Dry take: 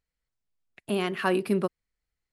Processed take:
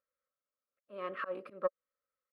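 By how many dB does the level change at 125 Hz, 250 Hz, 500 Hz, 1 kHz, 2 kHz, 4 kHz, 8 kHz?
under -25 dB, -23.0 dB, -9.5 dB, -9.5 dB, -12.5 dB, -21.0 dB, under -30 dB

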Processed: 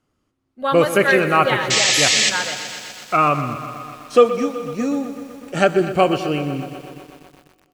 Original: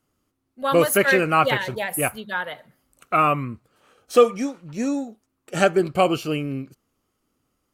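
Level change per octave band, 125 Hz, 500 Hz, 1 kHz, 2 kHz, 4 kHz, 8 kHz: +3.0 dB, +3.0 dB, +3.0 dB, +4.0 dB, +12.0 dB, +10.5 dB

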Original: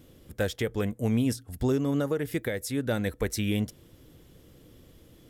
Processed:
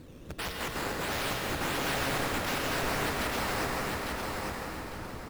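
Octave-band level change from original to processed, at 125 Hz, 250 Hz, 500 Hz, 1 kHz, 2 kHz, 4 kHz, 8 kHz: -7.5 dB, -8.5 dB, -4.5 dB, +10.5 dB, +6.5 dB, +6.0 dB, +2.5 dB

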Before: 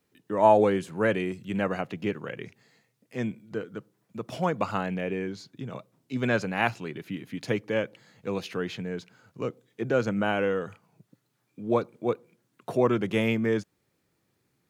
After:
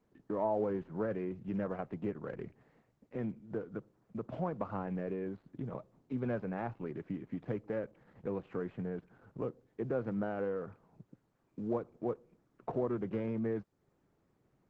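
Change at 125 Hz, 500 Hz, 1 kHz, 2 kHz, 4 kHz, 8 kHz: -7.5 dB, -10.0 dB, -13.5 dB, -18.0 dB, under -25 dB, under -25 dB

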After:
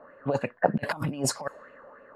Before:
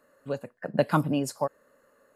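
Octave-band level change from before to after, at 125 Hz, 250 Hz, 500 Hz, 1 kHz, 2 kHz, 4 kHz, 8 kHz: -1.0 dB, -2.5 dB, -0.5 dB, +0.5 dB, +4.0 dB, +4.5 dB, +9.0 dB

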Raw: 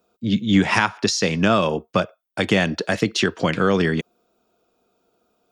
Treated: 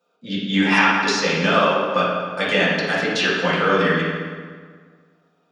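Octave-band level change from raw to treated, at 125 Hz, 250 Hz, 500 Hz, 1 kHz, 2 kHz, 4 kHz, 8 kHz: -3.0 dB, -2.0 dB, +1.5 dB, +4.0 dB, +5.0 dB, +2.5 dB, -3.0 dB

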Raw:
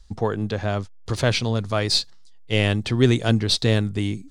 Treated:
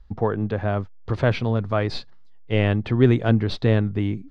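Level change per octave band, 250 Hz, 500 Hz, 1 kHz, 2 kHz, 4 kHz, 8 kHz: +1.0 dB, +1.0 dB, +0.5 dB, -2.5 dB, -11.5 dB, under -20 dB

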